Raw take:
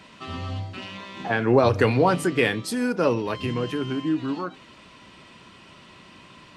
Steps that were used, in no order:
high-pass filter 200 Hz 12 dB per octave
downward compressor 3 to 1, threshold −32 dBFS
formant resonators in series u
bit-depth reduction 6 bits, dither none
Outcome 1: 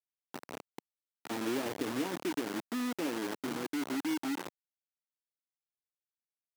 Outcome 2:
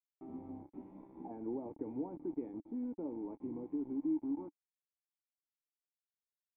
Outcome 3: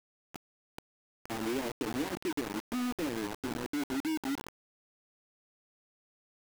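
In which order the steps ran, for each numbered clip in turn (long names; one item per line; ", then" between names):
formant resonators in series, then downward compressor, then bit-depth reduction, then high-pass filter
high-pass filter, then downward compressor, then bit-depth reduction, then formant resonators in series
formant resonators in series, then downward compressor, then high-pass filter, then bit-depth reduction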